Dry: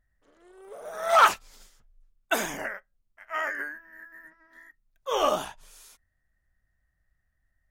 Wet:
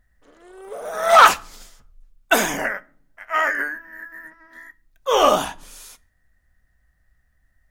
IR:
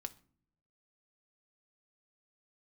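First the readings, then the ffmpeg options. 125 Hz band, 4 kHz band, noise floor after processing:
+9.5 dB, +9.0 dB, -66 dBFS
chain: -filter_complex "[0:a]asoftclip=type=tanh:threshold=-11.5dB,asplit=2[a][b];[1:a]atrim=start_sample=2205[c];[b][c]afir=irnorm=-1:irlink=0,volume=5dB[d];[a][d]amix=inputs=2:normalize=0,volume=3dB"

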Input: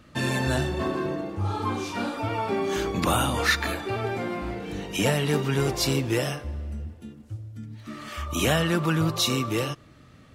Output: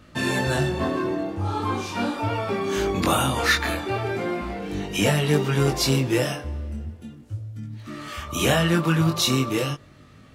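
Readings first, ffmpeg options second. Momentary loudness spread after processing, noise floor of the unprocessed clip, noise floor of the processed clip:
15 LU, -52 dBFS, -49 dBFS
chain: -af "flanger=delay=19.5:depth=4.5:speed=0.39,volume=5.5dB"

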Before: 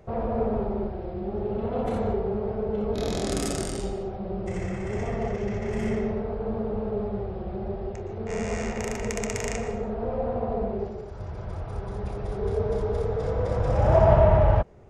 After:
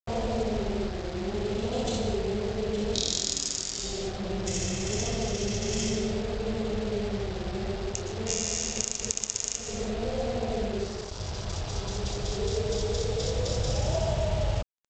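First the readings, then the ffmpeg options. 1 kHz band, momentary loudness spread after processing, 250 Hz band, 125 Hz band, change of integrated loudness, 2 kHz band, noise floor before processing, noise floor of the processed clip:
-7.0 dB, 5 LU, -2.5 dB, -4.5 dB, -2.5 dB, -1.0 dB, -36 dBFS, -38 dBFS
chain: -af "adynamicequalizer=threshold=0.00708:dfrequency=1100:dqfactor=1.1:tfrequency=1100:tqfactor=1.1:attack=5:release=100:ratio=0.375:range=3.5:mode=cutabove:tftype=bell,aexciter=amount=11.6:drive=4:freq=3k,acompressor=threshold=-24dB:ratio=6,aresample=16000,acrusher=bits=5:mix=0:aa=0.5,aresample=44100"

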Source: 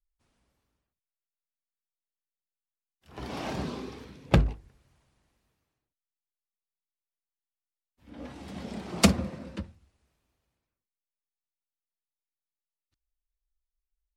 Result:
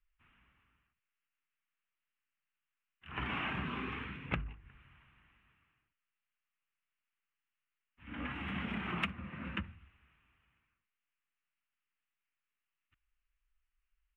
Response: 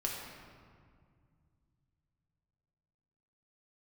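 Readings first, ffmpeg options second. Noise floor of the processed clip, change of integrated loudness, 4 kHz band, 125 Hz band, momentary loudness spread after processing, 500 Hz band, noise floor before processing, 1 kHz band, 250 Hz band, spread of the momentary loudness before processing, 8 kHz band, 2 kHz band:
under -85 dBFS, -10.5 dB, -9.0 dB, -12.0 dB, 13 LU, -14.5 dB, under -85 dBFS, -5.0 dB, -11.0 dB, 21 LU, under -30 dB, -0.5 dB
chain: -af "firequalizer=gain_entry='entry(170,0);entry(540,-11);entry(1200,8);entry(2800,10);entry(4600,-28);entry(9300,-21)':delay=0.05:min_phase=1,acompressor=threshold=-37dB:ratio=12,volume=3dB"

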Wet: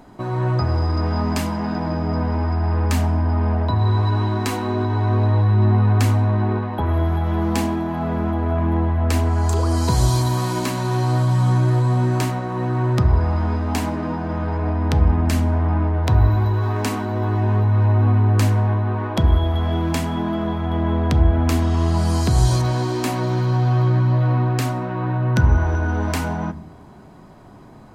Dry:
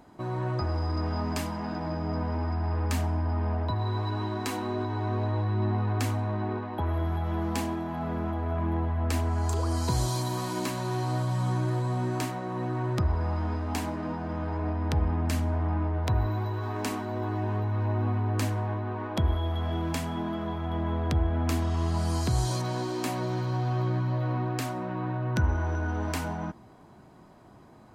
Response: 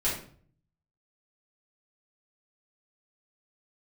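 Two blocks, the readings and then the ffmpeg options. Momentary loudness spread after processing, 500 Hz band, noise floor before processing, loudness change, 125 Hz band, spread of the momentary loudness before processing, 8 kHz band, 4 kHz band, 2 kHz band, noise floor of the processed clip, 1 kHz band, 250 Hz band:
6 LU, +8.0 dB, -52 dBFS, +10.0 dB, +11.0 dB, 5 LU, +7.0 dB, +7.5 dB, +8.0 dB, -42 dBFS, +7.5 dB, +9.0 dB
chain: -filter_complex "[0:a]asplit=2[a][b];[1:a]atrim=start_sample=2205,lowpass=7.2k,lowshelf=f=360:g=10[c];[b][c]afir=irnorm=-1:irlink=0,volume=-22dB[d];[a][d]amix=inputs=2:normalize=0,volume=7dB"

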